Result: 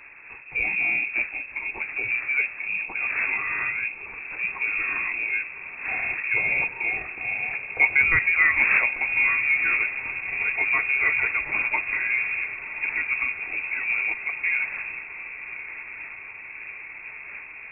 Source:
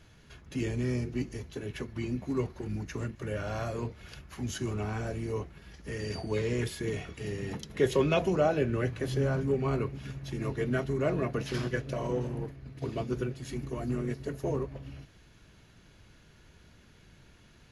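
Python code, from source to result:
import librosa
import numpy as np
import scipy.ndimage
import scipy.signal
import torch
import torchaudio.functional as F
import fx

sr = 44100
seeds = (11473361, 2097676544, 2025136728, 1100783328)

y = fx.dmg_wind(x, sr, seeds[0], corner_hz=630.0, level_db=-45.0)
y = fx.echo_diffused(y, sr, ms=1157, feedback_pct=75, wet_db=-13.5)
y = fx.freq_invert(y, sr, carrier_hz=2600)
y = F.gain(torch.from_numpy(y), 6.0).numpy()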